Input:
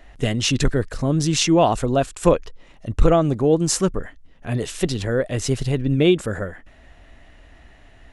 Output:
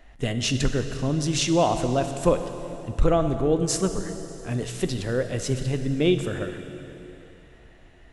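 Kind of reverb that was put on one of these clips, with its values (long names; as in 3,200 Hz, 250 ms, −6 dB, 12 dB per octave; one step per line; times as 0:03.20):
dense smooth reverb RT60 3.3 s, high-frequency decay 0.9×, DRR 7.5 dB
level −5 dB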